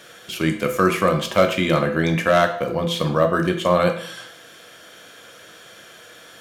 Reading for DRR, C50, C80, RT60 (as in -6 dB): 5.0 dB, 10.0 dB, 13.0 dB, 0.60 s